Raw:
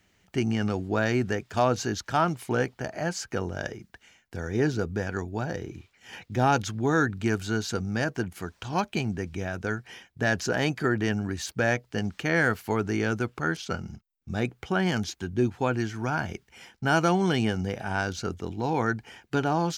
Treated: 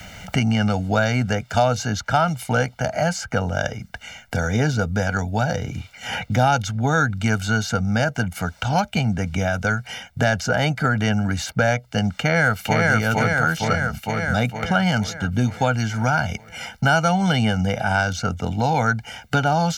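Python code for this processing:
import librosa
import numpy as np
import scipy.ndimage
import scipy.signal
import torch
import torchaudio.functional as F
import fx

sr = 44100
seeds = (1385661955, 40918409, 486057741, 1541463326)

y = fx.echo_throw(x, sr, start_s=12.13, length_s=0.74, ms=460, feedback_pct=60, wet_db=-0.5)
y = y + 0.89 * np.pad(y, (int(1.4 * sr / 1000.0), 0))[:len(y)]
y = fx.band_squash(y, sr, depth_pct=70)
y = y * 10.0 ** (4.0 / 20.0)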